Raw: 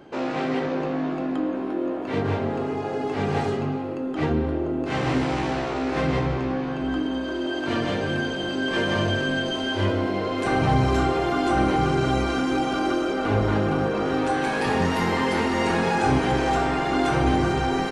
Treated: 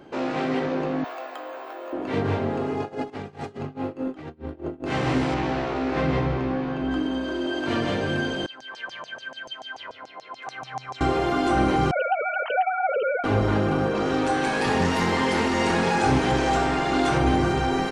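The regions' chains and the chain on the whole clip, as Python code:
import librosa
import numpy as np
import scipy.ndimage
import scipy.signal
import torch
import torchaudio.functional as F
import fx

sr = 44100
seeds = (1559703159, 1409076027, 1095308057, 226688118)

y = fx.chain(x, sr, fx.highpass(hz=570.0, slope=24),
    fx.high_shelf(hz=7700.0, db=8.5),
    fx.resample_bad(factor=2, down='none', up='hold'), at=(1.04, 1.93))
y = fx.chain(y, sr, fx.over_compress(threshold_db=-28.0, ratio=-0.5),
    fx.tremolo(hz=4.8, depth=0.92), at=(2.8, 4.84))
y = fx.chain(y, sr, fx.lowpass(hz=6800.0, slope=12),
    fx.high_shelf(hz=4600.0, db=-5.0), at=(5.34, 6.91))
y = fx.chain(y, sr, fx.hum_notches(base_hz=50, count=8),
    fx.filter_lfo_bandpass(shape='saw_down', hz=6.9, low_hz=720.0, high_hz=6400.0, q=4.9),
    fx.peak_eq(hz=130.0, db=14.0, octaves=0.3), at=(8.46, 11.01))
y = fx.chain(y, sr, fx.sine_speech(),
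    fx.notch_comb(f0_hz=340.0), at=(11.91, 13.24))
y = fx.chain(y, sr, fx.lowpass(hz=8900.0, slope=12),
    fx.high_shelf(hz=5900.0, db=8.5),
    fx.doppler_dist(depth_ms=0.13), at=(13.95, 17.18))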